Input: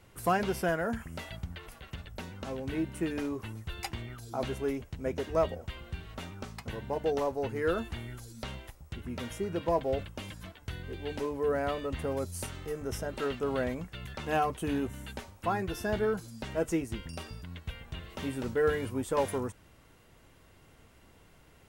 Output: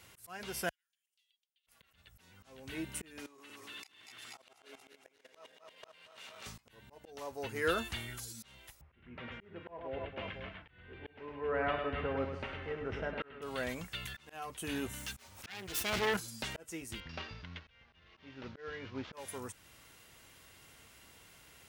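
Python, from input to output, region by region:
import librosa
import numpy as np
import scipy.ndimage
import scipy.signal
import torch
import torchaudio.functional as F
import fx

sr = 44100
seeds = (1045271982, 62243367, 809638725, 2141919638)

y = fx.chain(x, sr, fx.gate_flip(shuts_db=-34.0, range_db=-32),
    fx.ladder_highpass(hz=2700.0, resonance_pct=50), at=(0.69, 1.67))
y = fx.chain(y, sr, fx.reverse_delay_fb(ms=119, feedback_pct=74, wet_db=-0.5),
    fx.weighting(curve='A'),
    fx.level_steps(step_db=17), at=(3.26, 6.46))
y = fx.chain(y, sr, fx.lowpass(hz=2500.0, slope=24),
    fx.echo_multitap(ms=(41, 49, 104, 281, 500), db=(-15.0, -19.5, -6.5, -13.0, -17.0)), at=(8.81, 13.42))
y = fx.chain(y, sr, fx.self_delay(depth_ms=0.53),
    fx.sustainer(db_per_s=24.0), at=(14.99, 16.17))
y = fx.chain(y, sr, fx.cvsd(bps=32000),
    fx.lowpass(hz=2700.0, slope=12), at=(17.0, 19.13))
y = scipy.signal.sosfilt(scipy.signal.butter(2, 42.0, 'highpass', fs=sr, output='sos'), y)
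y = fx.tilt_shelf(y, sr, db=-7.0, hz=1300.0)
y = fx.auto_swell(y, sr, attack_ms=623.0)
y = y * 10.0 ** (1.5 / 20.0)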